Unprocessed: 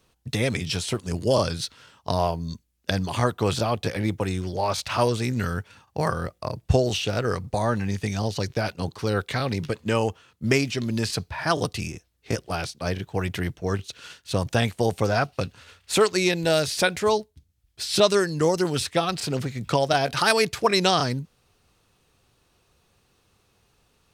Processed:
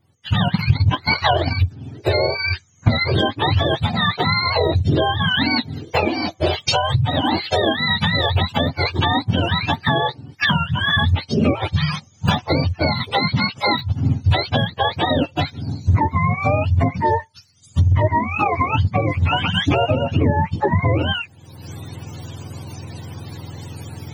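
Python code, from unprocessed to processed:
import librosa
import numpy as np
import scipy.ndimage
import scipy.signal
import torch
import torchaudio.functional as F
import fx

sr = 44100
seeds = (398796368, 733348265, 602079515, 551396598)

y = fx.octave_mirror(x, sr, pivot_hz=620.0)
y = fx.recorder_agc(y, sr, target_db=-9.0, rise_db_per_s=38.0, max_gain_db=30)
y = fx.transient(y, sr, attack_db=4, sustain_db=-8, at=(0.46, 1.58), fade=0.02)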